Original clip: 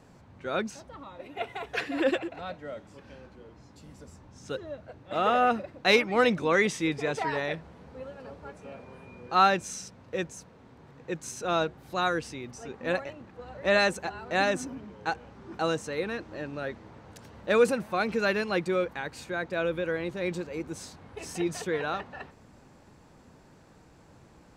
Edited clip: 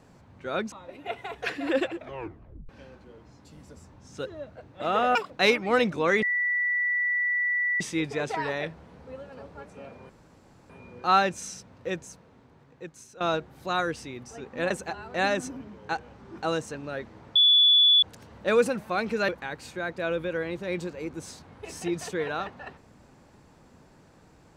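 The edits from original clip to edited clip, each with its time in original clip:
0:00.72–0:01.03: remove
0:02.28: tape stop 0.72 s
0:05.46–0:05.76: play speed 194%
0:06.68: insert tone 1,960 Hz −23 dBFS 1.58 s
0:08.97: splice in room tone 0.60 s
0:10.28–0:11.48: fade out, to −14.5 dB
0:12.98–0:13.87: remove
0:15.91–0:16.44: remove
0:17.05: insert tone 3,440 Hz −15 dBFS 0.67 s
0:18.31–0:18.82: remove

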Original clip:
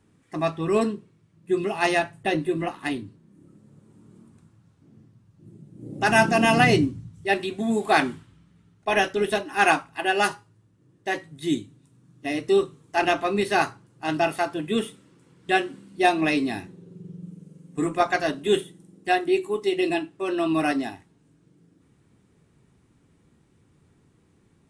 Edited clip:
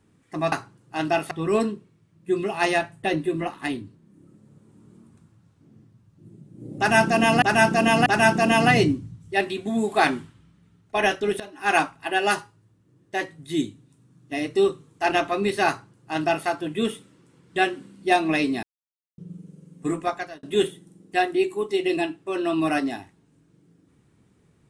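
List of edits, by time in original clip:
0:05.99–0:06.63: repeat, 3 plays
0:09.33–0:09.74: fade in, from −18 dB
0:13.61–0:14.40: duplicate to 0:00.52
0:16.56–0:17.11: silence
0:17.79–0:18.36: fade out

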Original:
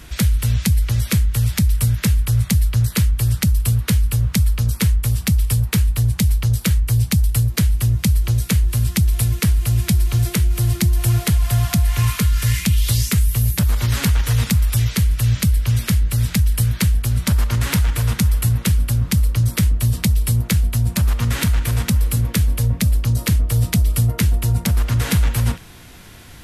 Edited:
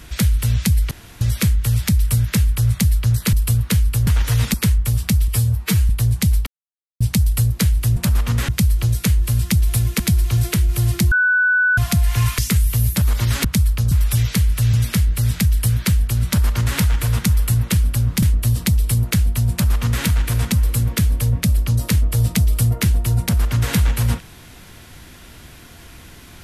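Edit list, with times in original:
0:00.91: splice in room tone 0.30 s
0:03.03–0:03.51: remove
0:04.25–0:04.72: swap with 0:14.06–0:14.53
0:05.46–0:05.87: time-stretch 1.5×
0:06.44–0:06.98: silence
0:09.45–0:09.81: remove
0:10.93–0:11.59: beep over 1,490 Hz −12.5 dBFS
0:12.20–0:13.00: remove
0:15.35–0:15.68: remove
0:19.17–0:19.60: remove
0:20.89–0:21.41: duplicate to 0:07.94

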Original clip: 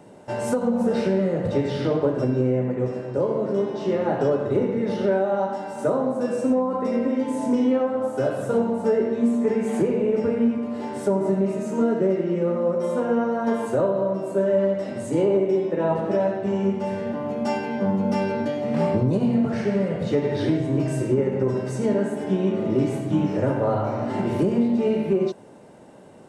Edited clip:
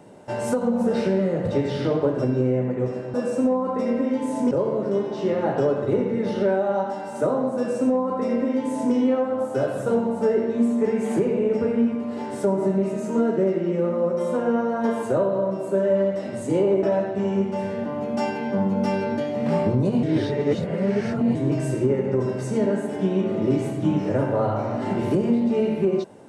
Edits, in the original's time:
0:06.20–0:07.57: duplicate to 0:03.14
0:15.46–0:16.11: remove
0:19.31–0:20.63: reverse

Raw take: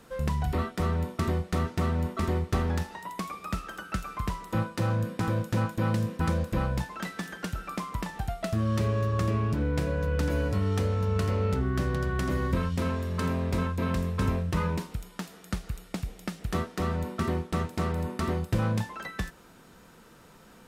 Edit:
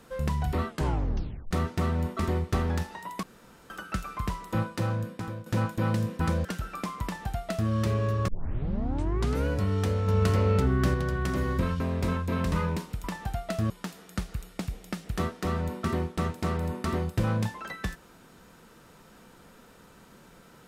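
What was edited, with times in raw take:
0:00.68: tape stop 0.83 s
0:03.23–0:03.70: fill with room tone
0:04.73–0:05.46: fade out, to −13.5 dB
0:06.45–0:07.39: remove
0:07.98–0:08.64: duplicate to 0:15.05
0:09.22: tape start 1.20 s
0:11.02–0:11.88: clip gain +3.5 dB
0:12.74–0:13.30: remove
0:14.02–0:14.53: remove

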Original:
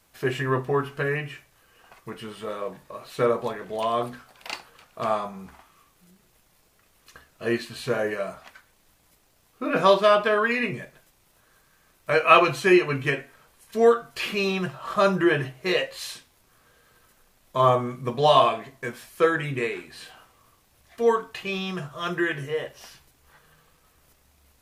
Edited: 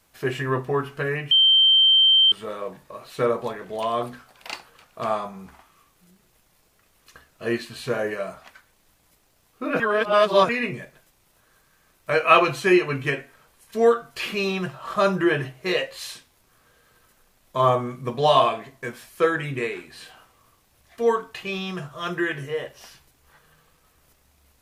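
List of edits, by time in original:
0:01.31–0:02.32: beep over 3,130 Hz −12.5 dBFS
0:09.80–0:10.49: reverse

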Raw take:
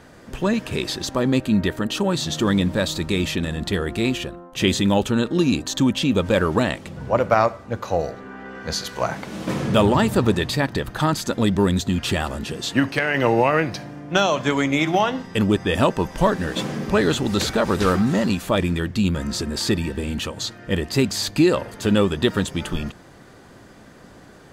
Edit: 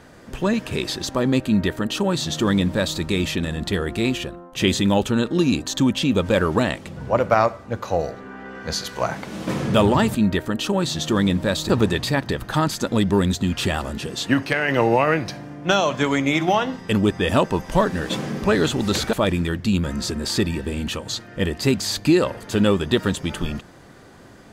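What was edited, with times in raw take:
0:01.46–0:03.00: duplicate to 0:10.15
0:17.59–0:18.44: remove

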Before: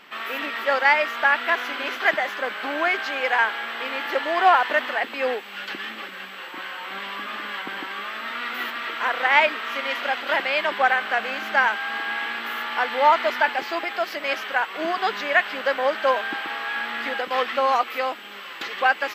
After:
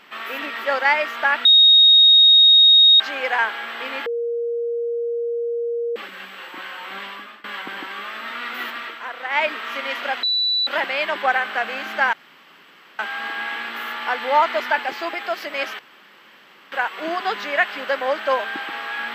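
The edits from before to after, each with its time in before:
0:01.45–0:03.00: beep over 3,740 Hz −8 dBFS
0:04.06–0:05.96: beep over 470 Hz −21 dBFS
0:07.02–0:07.44: fade out, to −22 dB
0:08.77–0:09.52: duck −8 dB, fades 0.24 s
0:10.23: insert tone 3,960 Hz −17 dBFS 0.44 s
0:11.69: splice in room tone 0.86 s
0:14.49: splice in room tone 0.93 s

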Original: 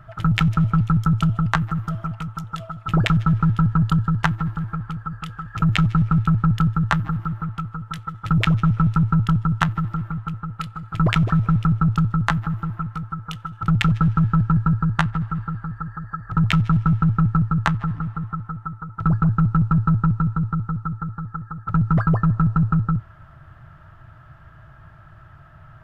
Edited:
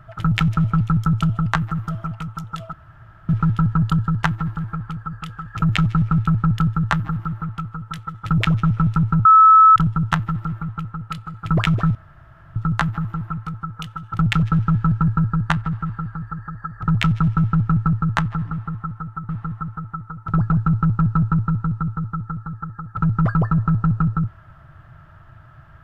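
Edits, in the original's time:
0:02.73–0:03.29: fill with room tone
0:09.25: insert tone 1,300 Hz −6 dBFS 0.51 s
0:11.44–0:12.05: fill with room tone
0:18.01–0:18.78: repeat, 2 plays

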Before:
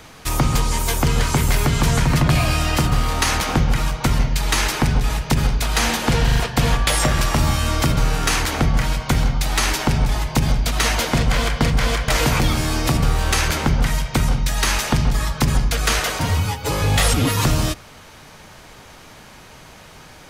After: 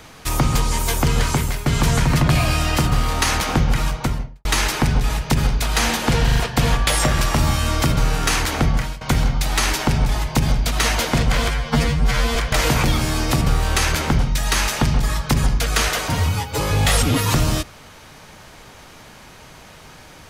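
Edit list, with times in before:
0:01.30–0:01.66: fade out, to −14 dB
0:03.88–0:04.45: fade out and dull
0:08.71–0:09.01: fade out, to −17.5 dB
0:11.48–0:11.92: time-stretch 2×
0:13.75–0:14.30: remove

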